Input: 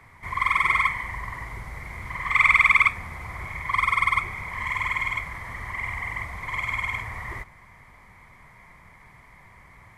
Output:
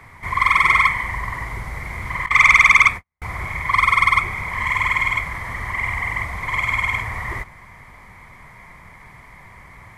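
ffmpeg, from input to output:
-filter_complex "[0:a]asettb=1/sr,asplit=3[a][b][c];[a]atrim=end=2.264[d];[b]atrim=start=2.26:end=3.22,asetpts=PTS-STARTPTS,afade=t=in:d=0.004:c=qsin,afade=t=out:st=0.956:d=0.004:c=qsin,agate=range=-57dB:threshold=-27dB:ratio=16:detection=peak[e];[c]atrim=start=3.216[f];[d][e]acrossfade=d=0.004:c1=hsin:c2=qsin[g];[g][f]acrossfade=d=0.004:c1=qsin:c2=hsin,acontrast=90"

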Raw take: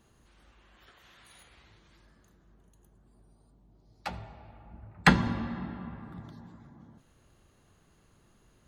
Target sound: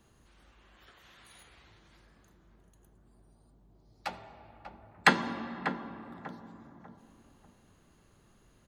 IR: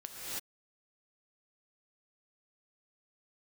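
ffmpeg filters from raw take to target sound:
-filter_complex "[0:a]acrossover=split=230[a][b];[a]acompressor=threshold=-58dB:ratio=6[c];[b]asplit=2[d][e];[e]adelay=592,lowpass=f=1.1k:p=1,volume=-7.5dB,asplit=2[f][g];[g]adelay=592,lowpass=f=1.1k:p=1,volume=0.37,asplit=2[h][i];[i]adelay=592,lowpass=f=1.1k:p=1,volume=0.37,asplit=2[j][k];[k]adelay=592,lowpass=f=1.1k:p=1,volume=0.37[l];[d][f][h][j][l]amix=inputs=5:normalize=0[m];[c][m]amix=inputs=2:normalize=0"

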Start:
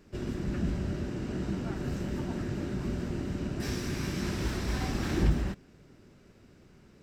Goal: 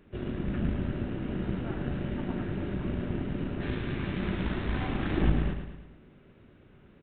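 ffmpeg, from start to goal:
-filter_complex "[0:a]aeval=exprs='0.211*(cos(1*acos(clip(val(0)/0.211,-1,1)))-cos(1*PI/2))+0.0335*(cos(4*acos(clip(val(0)/0.211,-1,1)))-cos(4*PI/2))':c=same,asplit=2[a][b];[b]aecho=0:1:109|218|327|436|545|654:0.422|0.211|0.105|0.0527|0.0264|0.0132[c];[a][c]amix=inputs=2:normalize=0,aresample=8000,aresample=44100"

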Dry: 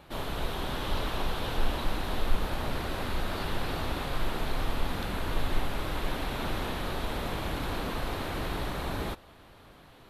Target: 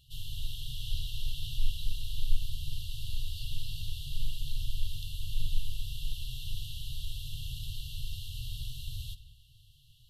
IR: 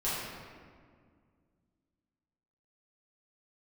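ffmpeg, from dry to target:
-filter_complex "[0:a]asplit=2[a][b];[1:a]atrim=start_sample=2205,asetrate=74970,aresample=44100[c];[b][c]afir=irnorm=-1:irlink=0,volume=-14dB[d];[a][d]amix=inputs=2:normalize=0,afftfilt=real='re*(1-between(b*sr/4096,140,2700))':imag='im*(1-between(b*sr/4096,140,2700))':win_size=4096:overlap=0.75,volume=-3dB"

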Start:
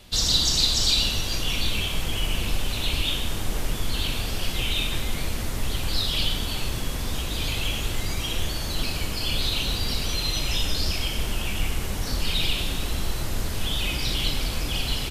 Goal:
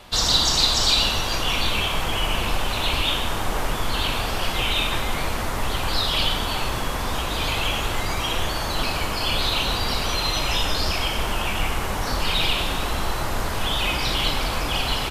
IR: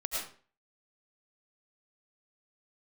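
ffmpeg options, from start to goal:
-af "equalizer=f=1k:w=0.62:g=13"

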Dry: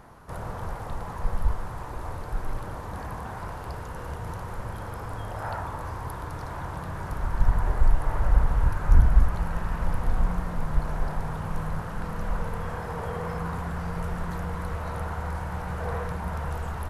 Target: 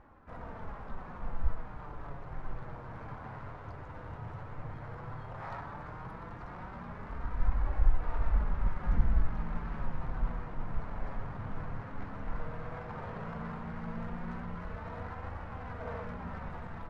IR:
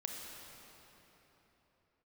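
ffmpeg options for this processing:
-filter_complex "[0:a]flanger=delay=3.5:depth=6.7:regen=20:speed=0.13:shape=triangular,asplit=2[a][b];[b]asetrate=58866,aresample=44100,atempo=0.749154,volume=-3dB[c];[a][c]amix=inputs=2:normalize=0,asplit=2[d][e];[1:a]atrim=start_sample=2205,adelay=115[f];[e][f]afir=irnorm=-1:irlink=0,volume=-13.5dB[g];[d][g]amix=inputs=2:normalize=0,adynamicsmooth=sensitivity=4:basefreq=2.3k,volume=-6.5dB"

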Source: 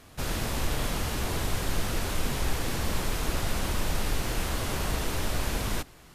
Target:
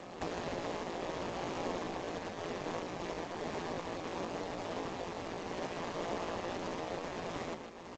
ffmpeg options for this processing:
-af "acompressor=threshold=-40dB:ratio=5,highpass=490,highshelf=f=2.6k:g=-9,aecho=1:1:107|214|321:0.447|0.103|0.0236,aresample=16000,acrusher=bits=3:mode=log:mix=0:aa=0.000001,aresample=44100,bandreject=f=1.4k:w=6.1,aeval=exprs='val(0)*sin(2*PI*87*n/s)':c=same,atempo=0.77,tiltshelf=f=660:g=7,volume=15.5dB" -ar 16000 -c:a g722

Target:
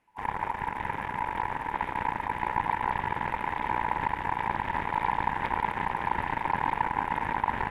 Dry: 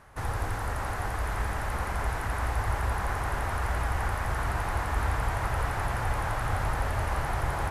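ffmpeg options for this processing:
-af "afwtdn=0.0251,aeval=exprs='0.158*(cos(1*acos(clip(val(0)/0.158,-1,1)))-cos(1*PI/2))+0.0501*(cos(4*acos(clip(val(0)/0.158,-1,1)))-cos(4*PI/2))':c=same,aeval=exprs='val(0)*sin(2*PI*920*n/s)':c=same"

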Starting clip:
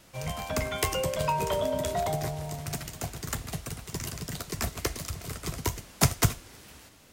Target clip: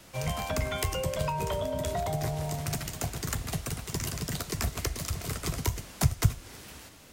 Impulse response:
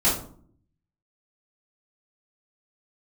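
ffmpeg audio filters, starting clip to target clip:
-filter_complex "[0:a]acrossover=split=140[a][b];[b]acompressor=threshold=-33dB:ratio=6[c];[a][c]amix=inputs=2:normalize=0,volume=3.5dB"

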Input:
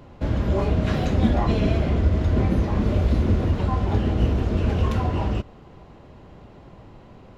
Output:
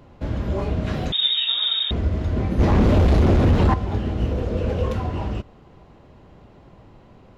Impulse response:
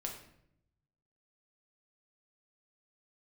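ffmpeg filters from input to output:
-filter_complex "[0:a]asettb=1/sr,asplit=3[a][b][c];[a]atrim=end=1.124[d];[b]atrim=start=1.12:end=1.91,asetpts=PTS-STARTPTS,afade=t=in:d=0.004:c=qsin,afade=t=out:st=0.786:d=0.004:c=qsin,lowpass=f=3.2k:t=q:w=0.5098,lowpass=f=3.2k:t=q:w=0.6013,lowpass=f=3.2k:t=q:w=0.9,lowpass=f=3.2k:t=q:w=2.563,afreqshift=-3800[e];[c]atrim=start=1.906[f];[d][e]acrossfade=d=0.004:c1=hsin:c2=qsin[g];[g][f]acrossfade=d=0.004:c1=qsin:c2=hsin,asettb=1/sr,asplit=3[h][i][j];[h]atrim=end=2.594[k];[i]atrim=start=2.59:end=3.74,asetpts=PTS-STARTPTS,afade=t=in:d=0.004:c=qsin,afade=t=out:st=1.146:d=0.004:c=qsin,aeval=exprs='0.355*sin(PI/2*2.51*val(0)/0.355)':c=same[l];[j]atrim=start=3.736[m];[k][l]acrossfade=d=0.004:c1=hsin:c2=qsin[n];[n][m]acrossfade=d=0.004:c1=qsin:c2=hsin,asettb=1/sr,asplit=3[o][p][q];[o]atrim=end=4.314[r];[p]atrim=start=4.31:end=4.93,asetpts=PTS-STARTPTS,afade=t=in:d=0.004:c=qsin,afade=t=out:st=0.616:d=0.004:c=qsin,equalizer=f=510:t=o:w=0.27:g=14[s];[q]atrim=start=4.926[t];[r][s]acrossfade=d=0.004:c1=hsin:c2=qsin[u];[u][t]acrossfade=d=0.004:c1=qsin:c2=hsin,volume=-2.5dB"

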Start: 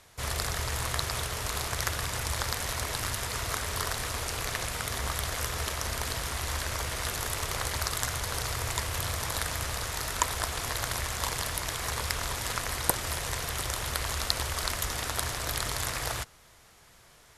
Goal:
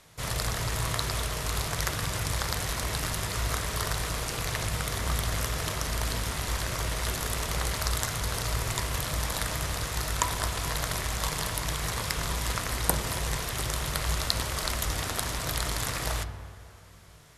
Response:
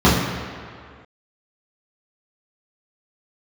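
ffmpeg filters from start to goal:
-filter_complex "[0:a]asplit=2[a][b];[1:a]atrim=start_sample=2205,asetrate=37485,aresample=44100[c];[b][c]afir=irnorm=-1:irlink=0,volume=-33.5dB[d];[a][d]amix=inputs=2:normalize=0"

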